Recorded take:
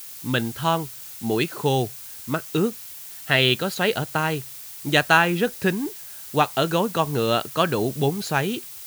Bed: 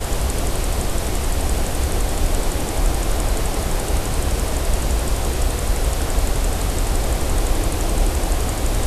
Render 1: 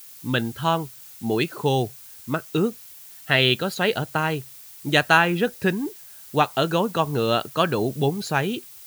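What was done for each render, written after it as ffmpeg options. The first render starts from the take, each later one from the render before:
ffmpeg -i in.wav -af "afftdn=noise_reduction=6:noise_floor=-39" out.wav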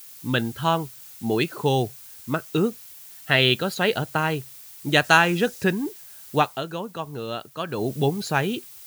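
ffmpeg -i in.wav -filter_complex "[0:a]asettb=1/sr,asplit=3[link_01][link_02][link_03];[link_01]atrim=end=5.044[link_04];[link_02]atrim=start=5.04:end=5.64,asetpts=PTS-STARTPTS,afade=type=in:duration=0.004:curve=qsin,afade=type=out:start_time=0.596:duration=0.004:curve=qsin,equalizer=frequency=6400:width_type=o:width=1.2:gain=7[link_05];[link_03]atrim=start=5.636[link_06];[link_04][link_05]acrossfade=duration=0.004:curve1=hsin:curve2=qsin[link_07];[link_07][link_06]acrossfade=duration=0.004:curve1=qsin:curve2=hsin,asplit=3[link_08][link_09][link_10];[link_08]atrim=end=6.63,asetpts=PTS-STARTPTS,afade=type=out:start_time=6.38:duration=0.25:silence=0.334965[link_11];[link_09]atrim=start=6.63:end=7.67,asetpts=PTS-STARTPTS,volume=-9.5dB[link_12];[link_10]atrim=start=7.67,asetpts=PTS-STARTPTS,afade=type=in:duration=0.25:silence=0.334965[link_13];[link_11][link_12][link_13]concat=n=3:v=0:a=1" out.wav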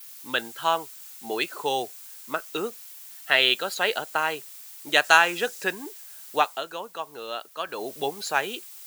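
ffmpeg -i in.wav -af "highpass=560,adynamicequalizer=threshold=0.00282:dfrequency=7500:dqfactor=4.9:tfrequency=7500:tqfactor=4.9:attack=5:release=100:ratio=0.375:range=2:mode=boostabove:tftype=bell" out.wav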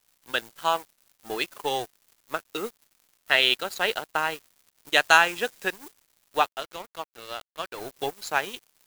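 ffmpeg -i in.wav -af "aeval=exprs='sgn(val(0))*max(abs(val(0))-0.0133,0)':channel_layout=same,acrusher=bits=8:dc=4:mix=0:aa=0.000001" out.wav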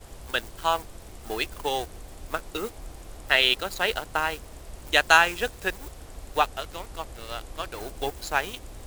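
ffmpeg -i in.wav -i bed.wav -filter_complex "[1:a]volume=-22.5dB[link_01];[0:a][link_01]amix=inputs=2:normalize=0" out.wav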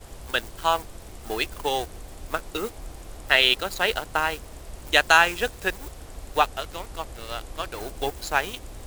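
ffmpeg -i in.wav -af "volume=2dB,alimiter=limit=-2dB:level=0:latency=1" out.wav

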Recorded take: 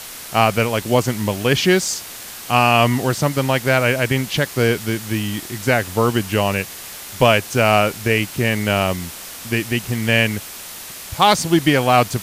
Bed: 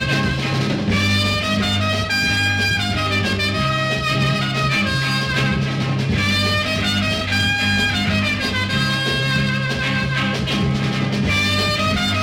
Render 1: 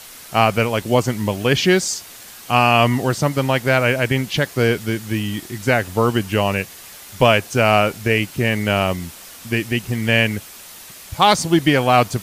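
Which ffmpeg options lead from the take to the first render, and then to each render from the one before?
ffmpeg -i in.wav -af "afftdn=noise_reduction=6:noise_floor=-34" out.wav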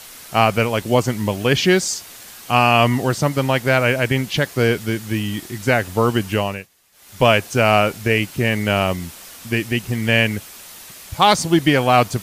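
ffmpeg -i in.wav -filter_complex "[0:a]asplit=3[link_01][link_02][link_03];[link_01]atrim=end=6.68,asetpts=PTS-STARTPTS,afade=type=out:start_time=6.32:duration=0.36:silence=0.1[link_04];[link_02]atrim=start=6.68:end=6.92,asetpts=PTS-STARTPTS,volume=-20dB[link_05];[link_03]atrim=start=6.92,asetpts=PTS-STARTPTS,afade=type=in:duration=0.36:silence=0.1[link_06];[link_04][link_05][link_06]concat=n=3:v=0:a=1" out.wav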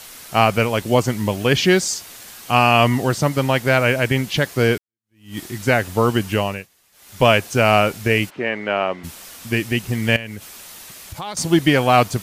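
ffmpeg -i in.wav -filter_complex "[0:a]asplit=3[link_01][link_02][link_03];[link_01]afade=type=out:start_time=8.29:duration=0.02[link_04];[link_02]highpass=340,lowpass=2200,afade=type=in:start_time=8.29:duration=0.02,afade=type=out:start_time=9.03:duration=0.02[link_05];[link_03]afade=type=in:start_time=9.03:duration=0.02[link_06];[link_04][link_05][link_06]amix=inputs=3:normalize=0,asettb=1/sr,asplit=3[link_07][link_08][link_09];[link_07]atrim=end=10.164[link_10];[link_08]atrim=start=10.16:end=11.37,asetpts=PTS-STARTPTS,afade=type=in:duration=0.004:curve=qsin,afade=type=out:start_time=1.206:duration=0.004:curve=qsin,acompressor=threshold=-29dB:ratio=4:attack=3.2:release=140:knee=1:detection=peak[link_11];[link_09]atrim=start=11.366[link_12];[link_10][link_11]acrossfade=duration=0.004:curve1=hsin:curve2=qsin[link_13];[link_13][link_12]acrossfade=duration=0.004:curve1=qsin:curve2=hsin,asplit=2[link_14][link_15];[link_14]atrim=end=4.78,asetpts=PTS-STARTPTS,afade=type=out:start_time=4.776:duration=0.004:curve=hsin[link_16];[link_15]atrim=start=4.78,asetpts=PTS-STARTPTS,afade=type=in:duration=0.6:curve=exp[link_17];[link_16][link_17]concat=n=2:v=0:a=1" out.wav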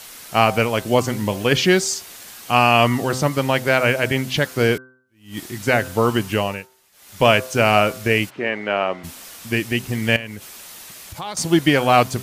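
ffmpeg -i in.wav -af "lowshelf=frequency=110:gain=-4.5,bandreject=frequency=128.7:width_type=h:width=4,bandreject=frequency=257.4:width_type=h:width=4,bandreject=frequency=386.1:width_type=h:width=4,bandreject=frequency=514.8:width_type=h:width=4,bandreject=frequency=643.5:width_type=h:width=4,bandreject=frequency=772.2:width_type=h:width=4,bandreject=frequency=900.9:width_type=h:width=4,bandreject=frequency=1029.6:width_type=h:width=4,bandreject=frequency=1158.3:width_type=h:width=4,bandreject=frequency=1287:width_type=h:width=4,bandreject=frequency=1415.7:width_type=h:width=4,bandreject=frequency=1544.4:width_type=h:width=4" out.wav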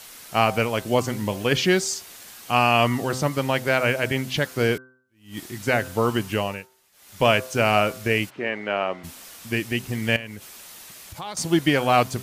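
ffmpeg -i in.wav -af "volume=-4dB" out.wav

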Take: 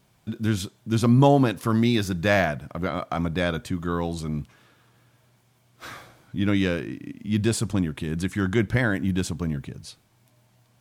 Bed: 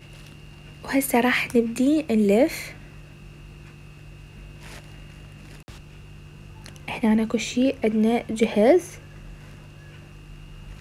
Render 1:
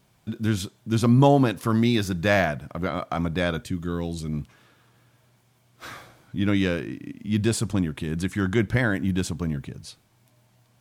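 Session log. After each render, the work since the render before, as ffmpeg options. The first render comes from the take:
ffmpeg -i in.wav -filter_complex "[0:a]asettb=1/sr,asplit=3[link_01][link_02][link_03];[link_01]atrim=end=3.634[link_04];[link_02]atrim=start=3.63:end=4.33,asetpts=PTS-STARTPTS,afade=type=in:duration=0.004:curve=qsin,afade=type=out:start_time=0.696:duration=0.004:curve=qsin,equalizer=frequency=950:width_type=o:width=1.4:gain=-10[link_05];[link_03]atrim=start=4.326[link_06];[link_04][link_05]acrossfade=duration=0.004:curve1=hsin:curve2=qsin[link_07];[link_07][link_06]acrossfade=duration=0.004:curve1=qsin:curve2=hsin" out.wav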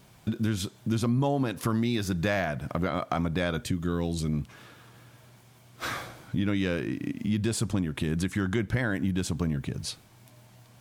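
ffmpeg -i in.wav -filter_complex "[0:a]asplit=2[link_01][link_02];[link_02]alimiter=limit=-16.5dB:level=0:latency=1:release=190,volume=2dB[link_03];[link_01][link_03]amix=inputs=2:normalize=0,acompressor=threshold=-27dB:ratio=3" out.wav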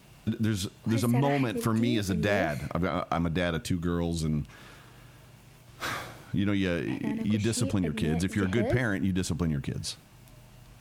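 ffmpeg -i in.wav -i bed.wav -filter_complex "[1:a]volume=-14.5dB[link_01];[0:a][link_01]amix=inputs=2:normalize=0" out.wav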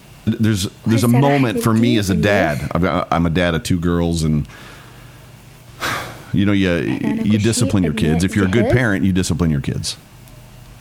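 ffmpeg -i in.wav -af "volume=12dB,alimiter=limit=-2dB:level=0:latency=1" out.wav

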